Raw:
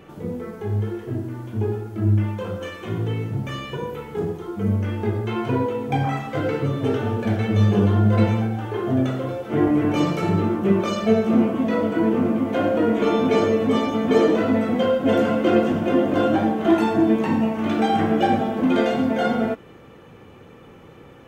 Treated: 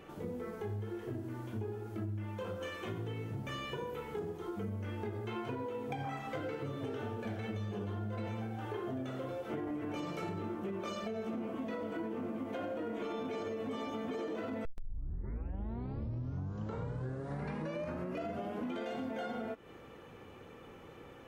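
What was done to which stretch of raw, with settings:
14.65 tape start 4.18 s
whole clip: bell 150 Hz -5 dB 1.7 oct; limiter -15.5 dBFS; compressor, threshold -31 dBFS; gain -5.5 dB

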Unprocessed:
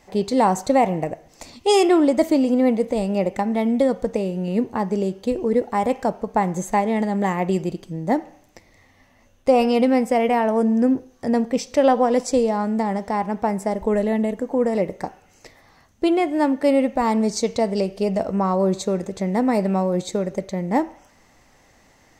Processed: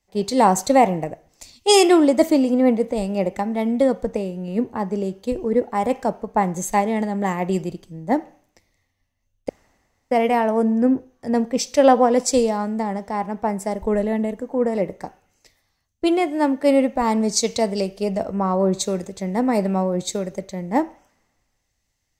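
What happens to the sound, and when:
9.49–10.11 room tone
whole clip: high shelf 7500 Hz +4 dB; three-band expander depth 70%

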